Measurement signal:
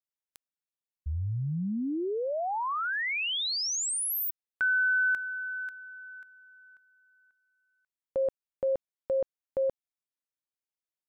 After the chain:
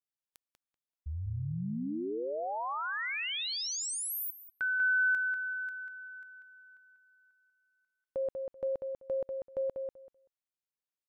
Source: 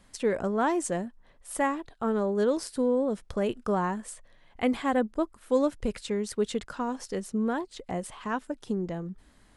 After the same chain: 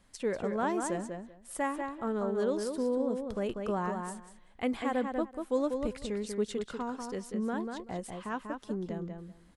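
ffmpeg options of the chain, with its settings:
ffmpeg -i in.wav -filter_complex "[0:a]asplit=2[link_01][link_02];[link_02]adelay=192,lowpass=frequency=3900:poles=1,volume=-5dB,asplit=2[link_03][link_04];[link_04]adelay=192,lowpass=frequency=3900:poles=1,volume=0.17,asplit=2[link_05][link_06];[link_06]adelay=192,lowpass=frequency=3900:poles=1,volume=0.17[link_07];[link_01][link_03][link_05][link_07]amix=inputs=4:normalize=0,volume=-5.5dB" out.wav

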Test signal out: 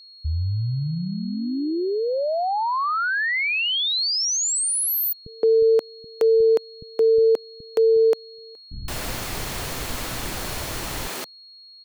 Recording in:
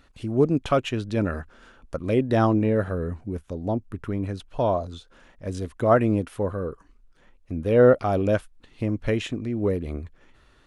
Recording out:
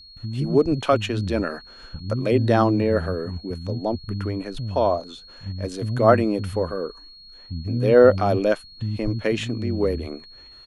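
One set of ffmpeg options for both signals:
ffmpeg -i in.wav -filter_complex "[0:a]acrossover=split=200[link_01][link_02];[link_02]adelay=170[link_03];[link_01][link_03]amix=inputs=2:normalize=0,aeval=exprs='val(0)+0.00447*sin(2*PI*4300*n/s)':channel_layout=same,volume=3dB" out.wav

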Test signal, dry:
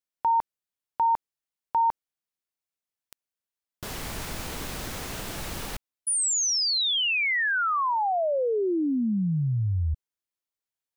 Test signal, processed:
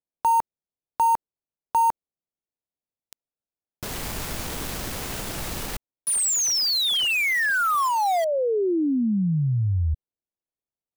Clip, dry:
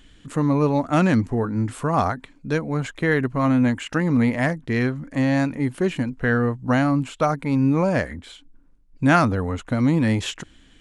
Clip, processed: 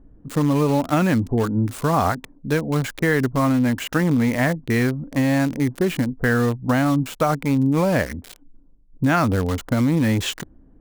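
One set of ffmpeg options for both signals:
ffmpeg -i in.wav -filter_complex "[0:a]acrossover=split=900[link_01][link_02];[link_02]acrusher=bits=5:mix=0:aa=0.000001[link_03];[link_01][link_03]amix=inputs=2:normalize=0,acompressor=threshold=-22dB:ratio=5:attack=60:release=46:knee=1:detection=rms,volume=3dB" out.wav

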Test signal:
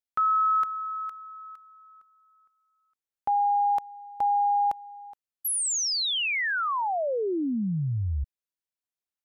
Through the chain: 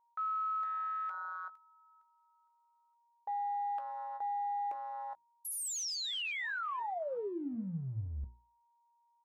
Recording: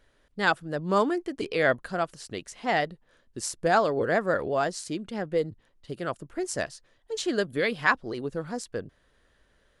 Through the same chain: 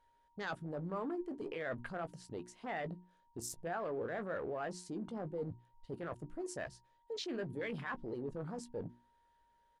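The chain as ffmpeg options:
ffmpeg -i in.wav -filter_complex "[0:a]aeval=exprs='val(0)+0.00126*sin(2*PI*940*n/s)':channel_layout=same,afwtdn=0.0158,areverse,acompressor=threshold=-40dB:ratio=5:attack=0.6:release=33:knee=1:detection=rms,areverse,bandreject=frequency=60:width_type=h:width=6,bandreject=frequency=120:width_type=h:width=6,bandreject=frequency=180:width_type=h:width=6,bandreject=frequency=240:width_type=h:width=6,bandreject=frequency=300:width_type=h:width=6,bandreject=frequency=360:width_type=h:width=6,asplit=2[link_01][link_02];[link_02]adelay=17,volume=-11dB[link_03];[link_01][link_03]amix=inputs=2:normalize=0,volume=2dB" out.wav

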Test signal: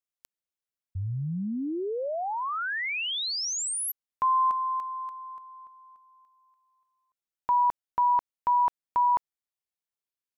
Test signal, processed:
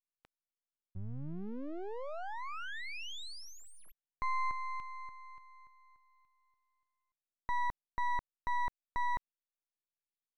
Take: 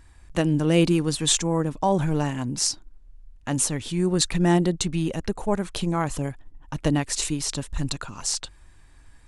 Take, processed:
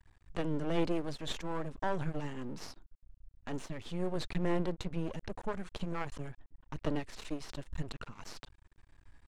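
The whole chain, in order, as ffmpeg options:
ffmpeg -i in.wav -filter_complex "[0:a]acrossover=split=4700[link_01][link_02];[link_02]acompressor=threshold=-39dB:ratio=4:attack=1:release=60[link_03];[link_01][link_03]amix=inputs=2:normalize=0,aeval=exprs='max(val(0),0)':channel_layout=same,aemphasis=mode=reproduction:type=50fm,volume=-6.5dB" out.wav

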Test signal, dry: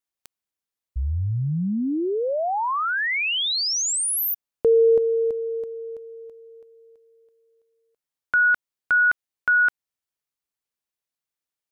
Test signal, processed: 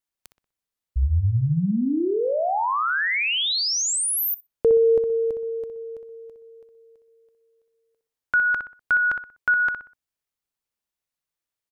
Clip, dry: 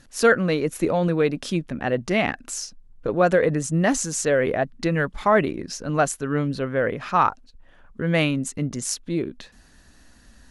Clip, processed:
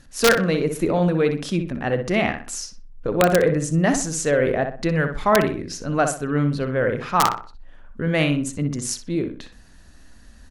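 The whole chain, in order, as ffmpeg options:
ffmpeg -i in.wav -filter_complex "[0:a]lowshelf=frequency=100:gain=5.5,aeval=exprs='(mod(2.11*val(0)+1,2)-1)/2.11':channel_layout=same,asplit=2[link_01][link_02];[link_02]adelay=62,lowpass=frequency=2600:poles=1,volume=-6.5dB,asplit=2[link_03][link_04];[link_04]adelay=62,lowpass=frequency=2600:poles=1,volume=0.35,asplit=2[link_05][link_06];[link_06]adelay=62,lowpass=frequency=2600:poles=1,volume=0.35,asplit=2[link_07][link_08];[link_08]adelay=62,lowpass=frequency=2600:poles=1,volume=0.35[link_09];[link_03][link_05][link_07][link_09]amix=inputs=4:normalize=0[link_10];[link_01][link_10]amix=inputs=2:normalize=0" out.wav

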